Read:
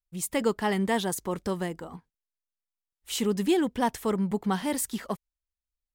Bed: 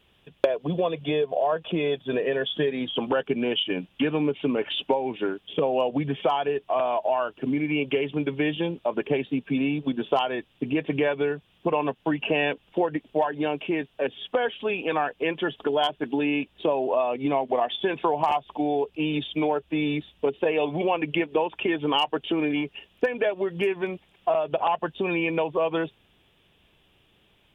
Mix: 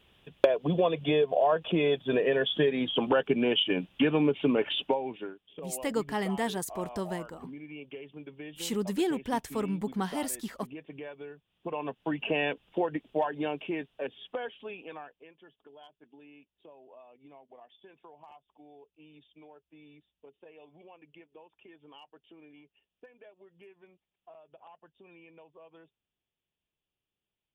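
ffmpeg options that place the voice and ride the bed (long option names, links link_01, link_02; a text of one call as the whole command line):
ffmpeg -i stem1.wav -i stem2.wav -filter_complex "[0:a]adelay=5500,volume=-4.5dB[link_01];[1:a]volume=13dB,afade=type=out:start_time=4.6:duration=0.78:silence=0.125893,afade=type=in:start_time=11.43:duration=0.84:silence=0.211349,afade=type=out:start_time=13.28:duration=2.01:silence=0.0595662[link_02];[link_01][link_02]amix=inputs=2:normalize=0" out.wav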